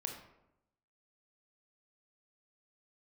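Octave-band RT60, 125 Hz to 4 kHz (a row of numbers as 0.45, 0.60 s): 1.0, 1.0, 0.90, 0.80, 0.65, 0.45 s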